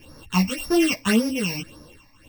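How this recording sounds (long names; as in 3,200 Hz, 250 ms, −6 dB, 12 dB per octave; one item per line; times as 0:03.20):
a buzz of ramps at a fixed pitch in blocks of 16 samples
phaser sweep stages 8, 1.8 Hz, lowest notch 400–2,800 Hz
tremolo triangle 1.3 Hz, depth 75%
a shimmering, thickened sound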